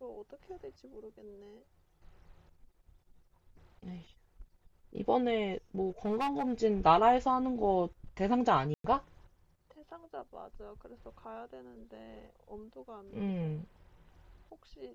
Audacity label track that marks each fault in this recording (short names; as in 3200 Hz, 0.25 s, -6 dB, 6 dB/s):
6.050000	6.530000	clipped -28 dBFS
8.740000	8.840000	gap 0.103 s